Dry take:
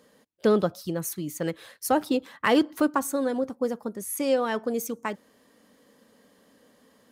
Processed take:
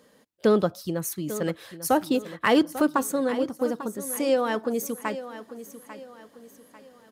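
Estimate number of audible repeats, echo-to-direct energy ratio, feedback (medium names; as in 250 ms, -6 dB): 3, -13.0 dB, 38%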